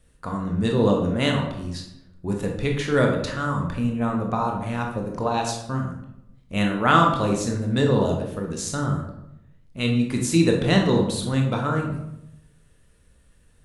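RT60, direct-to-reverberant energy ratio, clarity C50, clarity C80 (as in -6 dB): 0.85 s, 1.0 dB, 5.0 dB, 7.5 dB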